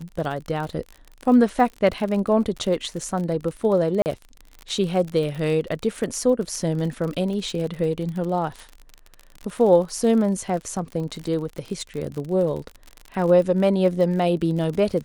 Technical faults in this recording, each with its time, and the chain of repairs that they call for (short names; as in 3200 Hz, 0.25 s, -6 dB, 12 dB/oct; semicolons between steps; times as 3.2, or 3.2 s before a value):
crackle 47/s -29 dBFS
4.02–4.06 gap 39 ms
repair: de-click; interpolate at 4.02, 39 ms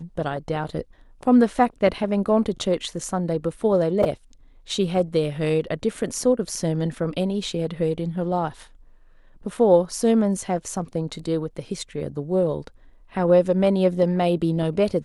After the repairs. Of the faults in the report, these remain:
none